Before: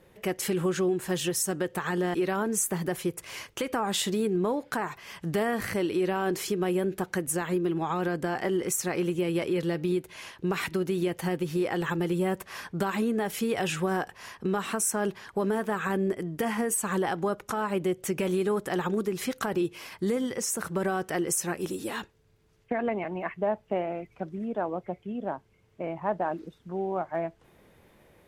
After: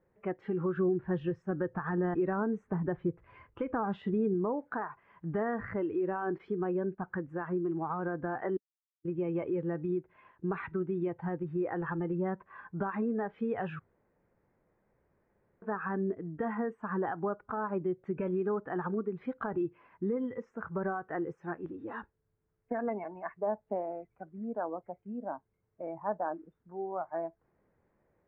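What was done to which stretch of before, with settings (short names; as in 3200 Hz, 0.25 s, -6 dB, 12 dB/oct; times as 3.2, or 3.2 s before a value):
0.76–4.34 low shelf 250 Hz +6 dB
6.38–7.01 gate -39 dBFS, range -10 dB
8.57–9.05 mute
13.79–15.62 room tone
whole clip: spectral noise reduction 10 dB; LPF 1800 Hz 24 dB/oct; gain -4.5 dB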